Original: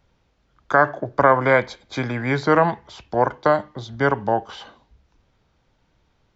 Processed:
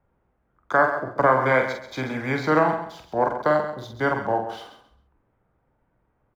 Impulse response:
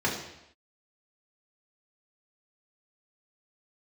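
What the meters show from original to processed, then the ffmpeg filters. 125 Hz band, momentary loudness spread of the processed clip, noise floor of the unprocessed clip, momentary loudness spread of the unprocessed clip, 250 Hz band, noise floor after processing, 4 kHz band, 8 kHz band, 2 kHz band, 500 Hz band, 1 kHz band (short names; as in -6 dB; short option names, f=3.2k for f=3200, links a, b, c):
-4.5 dB, 11 LU, -66 dBFS, 14 LU, -2.5 dB, -70 dBFS, -3.5 dB, n/a, -2.0 dB, -2.5 dB, -2.5 dB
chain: -filter_complex "[0:a]lowshelf=f=150:g=-5,bandreject=f=90.63:t=h:w=4,bandreject=f=181.26:t=h:w=4,bandreject=f=271.89:t=h:w=4,bandreject=f=362.52:t=h:w=4,bandreject=f=453.15:t=h:w=4,bandreject=f=543.78:t=h:w=4,bandreject=f=634.41:t=h:w=4,bandreject=f=725.04:t=h:w=4,bandreject=f=815.67:t=h:w=4,bandreject=f=906.3:t=h:w=4,bandreject=f=996.93:t=h:w=4,bandreject=f=1.08756k:t=h:w=4,bandreject=f=1.17819k:t=h:w=4,bandreject=f=1.26882k:t=h:w=4,bandreject=f=1.35945k:t=h:w=4,bandreject=f=1.45008k:t=h:w=4,bandreject=f=1.54071k:t=h:w=4,bandreject=f=1.63134k:t=h:w=4,bandreject=f=1.72197k:t=h:w=4,bandreject=f=1.8126k:t=h:w=4,bandreject=f=1.90323k:t=h:w=4,bandreject=f=1.99386k:t=h:w=4,bandreject=f=2.08449k:t=h:w=4,bandreject=f=2.17512k:t=h:w=4,bandreject=f=2.26575k:t=h:w=4,bandreject=f=2.35638k:t=h:w=4,bandreject=f=2.44701k:t=h:w=4,bandreject=f=2.53764k:t=h:w=4,bandreject=f=2.62827k:t=h:w=4,bandreject=f=2.7189k:t=h:w=4,bandreject=f=2.80953k:t=h:w=4,bandreject=f=2.90016k:t=h:w=4,bandreject=f=2.99079k:t=h:w=4,bandreject=f=3.08142k:t=h:w=4,bandreject=f=3.17205k:t=h:w=4,bandreject=f=3.26268k:t=h:w=4,bandreject=f=3.35331k:t=h:w=4,acrossover=split=330|1900[a][b][c];[c]aeval=exprs='sgn(val(0))*max(abs(val(0))-0.00282,0)':c=same[d];[a][b][d]amix=inputs=3:normalize=0,asplit=2[e][f];[f]adelay=46,volume=-5.5dB[g];[e][g]amix=inputs=2:normalize=0,aecho=1:1:134|268|402:0.299|0.0657|0.0144,volume=-3dB"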